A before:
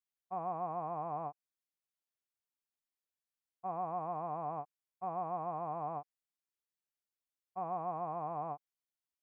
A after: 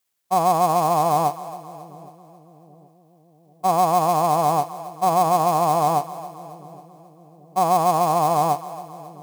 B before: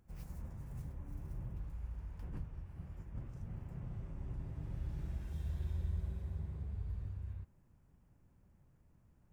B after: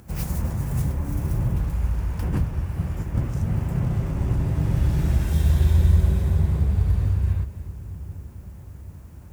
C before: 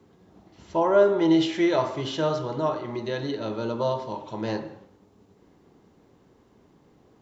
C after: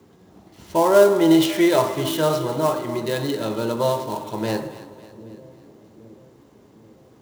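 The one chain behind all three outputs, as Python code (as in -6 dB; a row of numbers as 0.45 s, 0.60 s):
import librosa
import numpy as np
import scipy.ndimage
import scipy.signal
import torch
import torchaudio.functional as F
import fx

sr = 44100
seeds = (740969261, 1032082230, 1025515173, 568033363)

y = fx.dead_time(x, sr, dead_ms=0.074)
y = scipy.signal.sosfilt(scipy.signal.butter(2, 53.0, 'highpass', fs=sr, output='sos'), y)
y = fx.high_shelf(y, sr, hz=6300.0, db=7.0)
y = fx.echo_split(y, sr, split_hz=470.0, low_ms=786, high_ms=273, feedback_pct=52, wet_db=-15.5)
y = y * 10.0 ** (-22 / 20.0) / np.sqrt(np.mean(np.square(y)))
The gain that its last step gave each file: +20.0 dB, +22.0 dB, +5.0 dB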